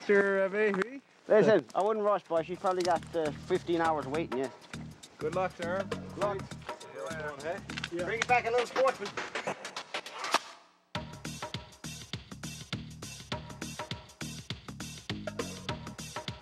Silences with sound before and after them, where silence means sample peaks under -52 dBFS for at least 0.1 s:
10.66–10.95

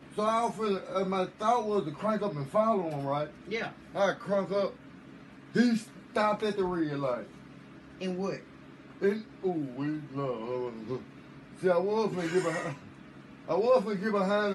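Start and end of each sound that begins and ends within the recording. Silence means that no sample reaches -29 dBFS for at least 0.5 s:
5.56–7.17
8.02–8.36
9.02–10.96
11.63–12.7

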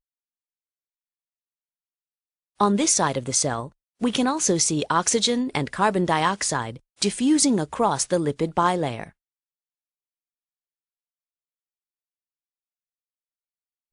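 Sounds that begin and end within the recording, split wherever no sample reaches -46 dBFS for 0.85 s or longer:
2.6–9.09

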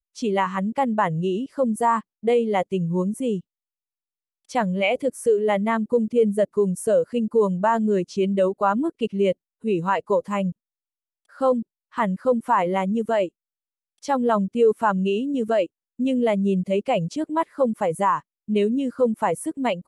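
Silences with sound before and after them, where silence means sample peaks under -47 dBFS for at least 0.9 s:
3.41–4.49

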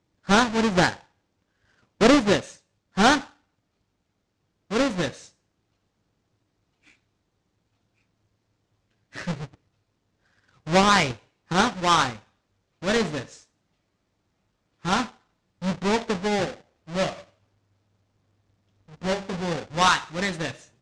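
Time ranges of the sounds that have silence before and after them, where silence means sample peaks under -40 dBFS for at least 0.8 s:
2.01–3.28
4.7–5.26
9.14–9.54
10.67–13.41
14.85–17.21

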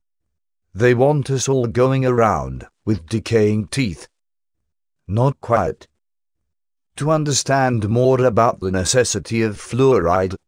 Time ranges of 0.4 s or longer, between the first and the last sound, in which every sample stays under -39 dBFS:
4.05–5.08
5.84–6.98

